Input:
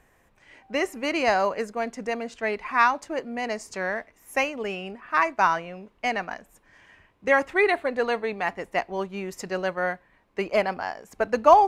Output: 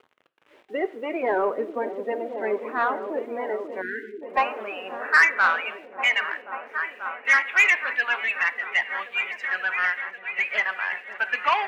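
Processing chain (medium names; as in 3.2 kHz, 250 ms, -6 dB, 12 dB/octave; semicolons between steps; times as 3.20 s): coarse spectral quantiser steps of 30 dB; in parallel at -6 dB: hard clipper -19.5 dBFS, distortion -8 dB; on the sum: band-pass sweep 400 Hz -> 2.6 kHz, 3.58–5.57 s; word length cut 10-bit, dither none; resonant high shelf 3.9 kHz -6.5 dB, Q 1.5; delay with an opening low-pass 537 ms, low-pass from 400 Hz, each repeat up 1 oct, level -6 dB; on a send at -14 dB: reverberation, pre-delay 3 ms; on the sum: dynamic bell 1.4 kHz, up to +6 dB, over -45 dBFS, Q 1.1; high-pass 73 Hz; overdrive pedal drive 11 dB, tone 4 kHz, clips at -8.5 dBFS; spectral selection erased 3.81–4.22 s, 470–1400 Hz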